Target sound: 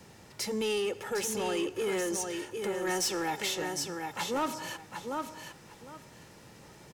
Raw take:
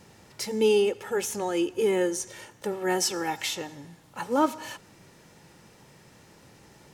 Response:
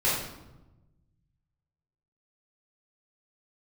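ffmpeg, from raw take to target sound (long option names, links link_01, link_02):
-filter_complex "[0:a]acrossover=split=130|950|4300[link_01][link_02][link_03][link_04];[link_02]alimiter=level_in=1dB:limit=-24dB:level=0:latency=1,volume=-1dB[link_05];[link_01][link_05][link_03][link_04]amix=inputs=4:normalize=0,aecho=1:1:756|1512|2268:0.473|0.0852|0.0153,asoftclip=type=tanh:threshold=-25dB"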